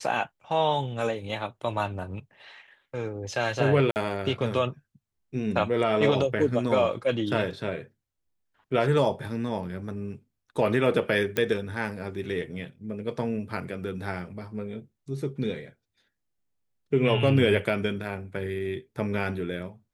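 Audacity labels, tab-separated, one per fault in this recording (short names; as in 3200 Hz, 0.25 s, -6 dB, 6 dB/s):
3.910000	3.960000	gap 49 ms
11.370000	11.370000	pop -12 dBFS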